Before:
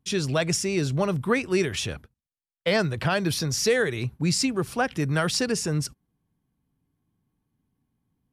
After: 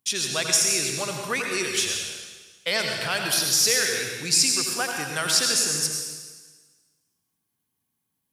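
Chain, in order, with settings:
spectral tilt +4 dB per octave
convolution reverb RT60 1.4 s, pre-delay 73 ms, DRR 1.5 dB
level −3.5 dB

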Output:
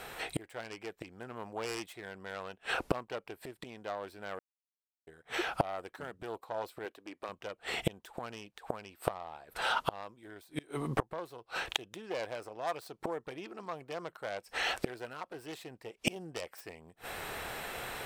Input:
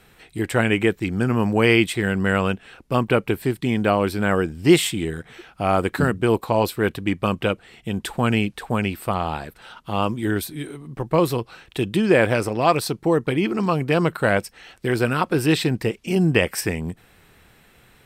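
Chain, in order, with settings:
phase distortion by the signal itself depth 0.23 ms
gate with flip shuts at −22 dBFS, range −33 dB
0:06.85–0:07.29: low shelf with overshoot 200 Hz −12.5 dB, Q 1.5
speech leveller within 4 dB 2 s
drawn EQ curve 210 Hz 0 dB, 660 Hz +15 dB, 2,100 Hz +9 dB
0:04.39–0:05.07: silence

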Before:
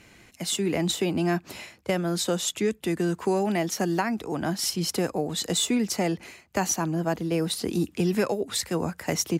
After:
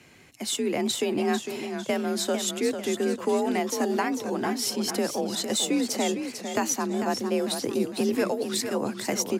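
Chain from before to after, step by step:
frequency shifter +42 Hz
feedback echo with a swinging delay time 451 ms, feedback 43%, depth 146 cents, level −8 dB
level −1 dB

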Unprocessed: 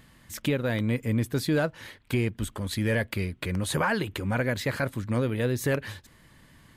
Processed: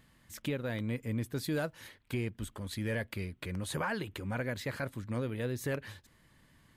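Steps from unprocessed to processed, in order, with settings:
0:01.43–0:01.87: high-shelf EQ 8,800 Hz → 5,800 Hz +11 dB
level −8.5 dB

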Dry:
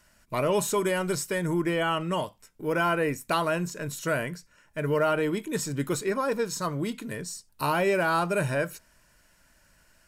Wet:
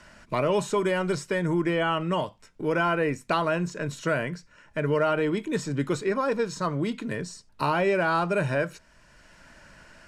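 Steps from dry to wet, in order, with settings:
high-frequency loss of the air 87 metres
multiband upward and downward compressor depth 40%
level +1.5 dB

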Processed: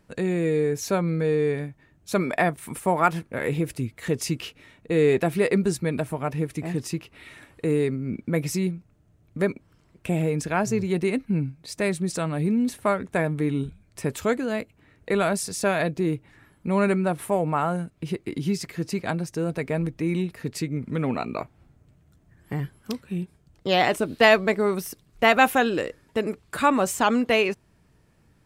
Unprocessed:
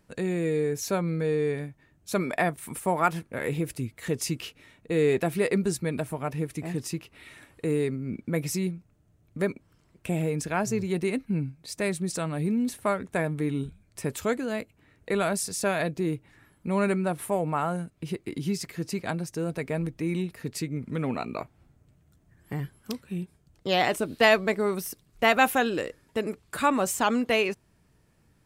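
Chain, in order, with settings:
high-shelf EQ 6,000 Hz −5 dB
level +3.5 dB

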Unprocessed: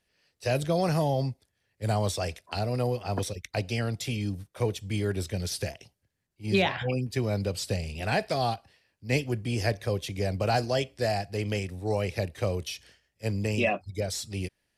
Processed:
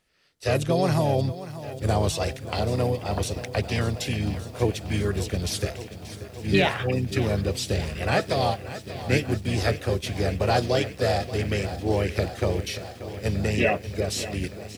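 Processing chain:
pitch-shifted copies added −5 semitones −5 dB, −3 semitones −18 dB
feedback echo at a low word length 583 ms, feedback 80%, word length 8 bits, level −14 dB
level +2.5 dB

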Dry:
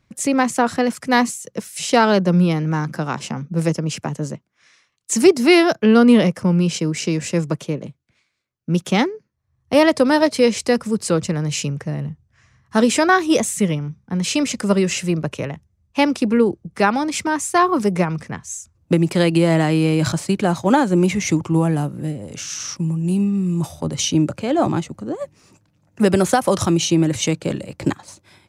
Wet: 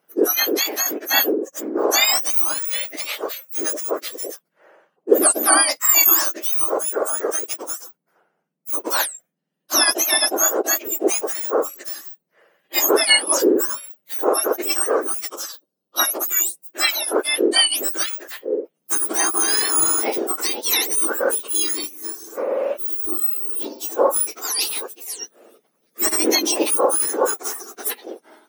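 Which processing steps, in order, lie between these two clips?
frequency axis turned over on the octave scale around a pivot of 1,800 Hz
0:15.30–0:16.00: octave-band graphic EQ 125/2,000/4,000 Hz −12/−11/+6 dB
level +2.5 dB

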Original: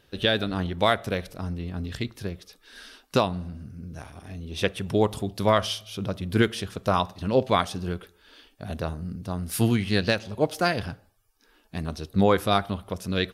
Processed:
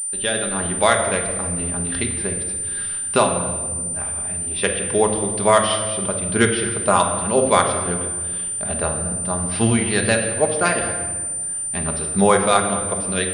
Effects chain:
parametric band 140 Hz −10.5 dB 2.9 octaves
automatic gain control gain up to 8.5 dB
high-frequency loss of the air 120 metres
rectangular room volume 1,600 cubic metres, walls mixed, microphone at 1.3 metres
switching amplifier with a slow clock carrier 9,100 Hz
level +1.5 dB

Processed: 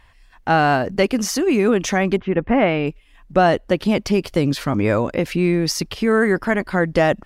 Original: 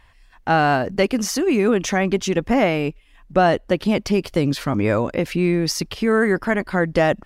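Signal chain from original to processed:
0:02.16–0:02.86: low-pass filter 1,800 Hz → 4,300 Hz 24 dB per octave
level +1 dB

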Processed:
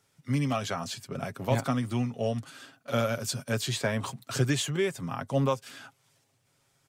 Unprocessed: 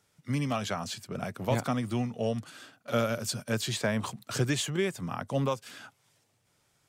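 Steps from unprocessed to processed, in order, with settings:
comb filter 7.4 ms, depth 41%

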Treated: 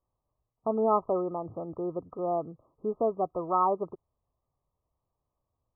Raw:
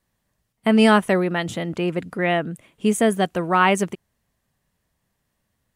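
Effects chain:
linear-phase brick-wall low-pass 1,300 Hz
parametric band 200 Hz −13.5 dB 0.73 octaves
level −6 dB

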